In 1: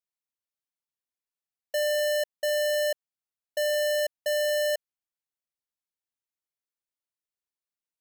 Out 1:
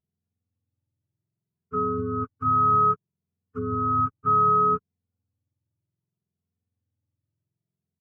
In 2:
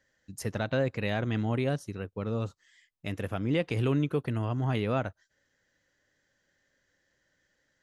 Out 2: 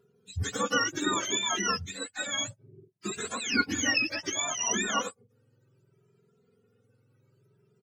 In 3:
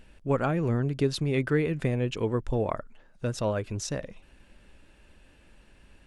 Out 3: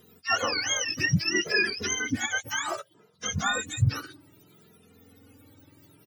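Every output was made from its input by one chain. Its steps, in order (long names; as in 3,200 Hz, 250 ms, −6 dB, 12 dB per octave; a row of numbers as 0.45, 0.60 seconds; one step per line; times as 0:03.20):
frequency axis turned over on the octave scale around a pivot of 870 Hz
barber-pole flanger 2.5 ms +0.64 Hz
normalise the peak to −12 dBFS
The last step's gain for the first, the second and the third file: +7.0, +7.0, +6.5 decibels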